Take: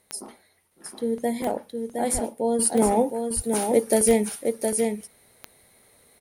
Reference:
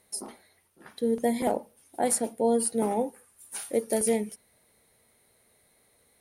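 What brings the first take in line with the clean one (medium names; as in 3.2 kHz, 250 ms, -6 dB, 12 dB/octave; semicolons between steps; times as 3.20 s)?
de-click; 2.13–2.25 s: high-pass 140 Hz 24 dB/octave; 3.35–3.47 s: high-pass 140 Hz 24 dB/octave; inverse comb 715 ms -5 dB; trim 0 dB, from 2.59 s -6.5 dB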